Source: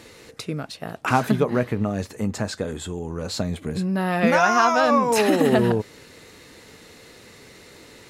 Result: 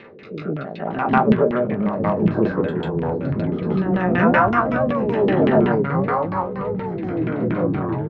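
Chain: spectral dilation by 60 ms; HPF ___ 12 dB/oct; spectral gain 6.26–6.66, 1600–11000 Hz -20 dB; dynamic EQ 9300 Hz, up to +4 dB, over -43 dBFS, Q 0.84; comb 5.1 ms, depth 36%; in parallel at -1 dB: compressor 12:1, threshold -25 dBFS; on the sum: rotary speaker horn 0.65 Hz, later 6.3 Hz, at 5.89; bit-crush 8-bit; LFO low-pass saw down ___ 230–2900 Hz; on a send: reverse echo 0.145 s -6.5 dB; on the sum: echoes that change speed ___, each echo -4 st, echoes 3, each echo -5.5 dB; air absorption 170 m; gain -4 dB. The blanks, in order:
120 Hz, 5.3 Hz, 0.614 s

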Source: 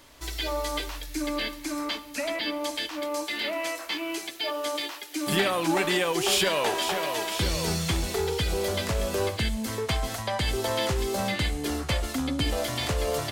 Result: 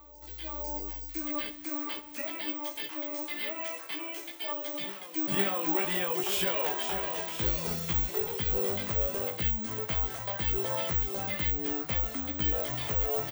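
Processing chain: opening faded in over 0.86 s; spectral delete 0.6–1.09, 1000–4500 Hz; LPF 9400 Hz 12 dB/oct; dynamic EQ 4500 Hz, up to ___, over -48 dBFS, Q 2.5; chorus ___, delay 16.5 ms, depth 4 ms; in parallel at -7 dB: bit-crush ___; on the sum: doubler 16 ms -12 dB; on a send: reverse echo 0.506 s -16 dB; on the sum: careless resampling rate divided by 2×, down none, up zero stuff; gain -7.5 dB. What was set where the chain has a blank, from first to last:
-6 dB, 0.64 Hz, 8-bit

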